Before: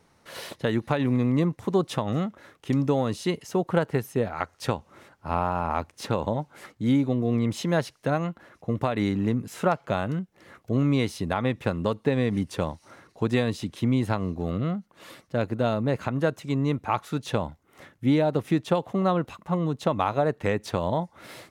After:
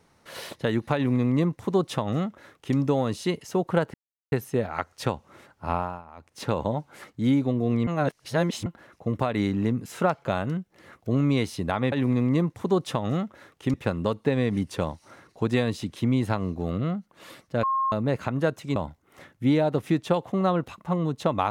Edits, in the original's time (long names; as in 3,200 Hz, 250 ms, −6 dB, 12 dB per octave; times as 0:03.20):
0:00.95–0:02.77: duplicate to 0:11.54
0:03.94: splice in silence 0.38 s
0:05.34–0:06.09: duck −20 dB, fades 0.31 s
0:07.49–0:08.28: reverse
0:15.43–0:15.72: beep over 1,070 Hz −21.5 dBFS
0:16.56–0:17.37: remove